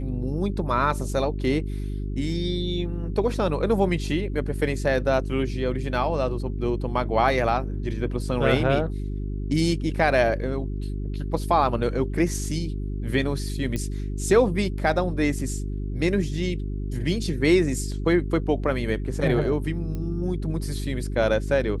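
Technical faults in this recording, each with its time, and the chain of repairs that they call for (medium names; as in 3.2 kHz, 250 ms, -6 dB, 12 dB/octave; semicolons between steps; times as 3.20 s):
hum 50 Hz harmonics 8 -29 dBFS
13.76 s: pop -16 dBFS
19.95 s: pop -21 dBFS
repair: de-click; de-hum 50 Hz, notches 8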